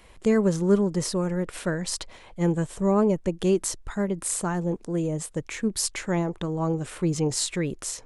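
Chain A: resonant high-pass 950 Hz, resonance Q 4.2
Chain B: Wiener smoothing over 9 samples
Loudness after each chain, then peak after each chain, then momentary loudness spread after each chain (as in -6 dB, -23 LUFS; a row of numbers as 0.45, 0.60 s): -29.5, -26.5 LUFS; -8.5, -8.5 dBFS; 11, 8 LU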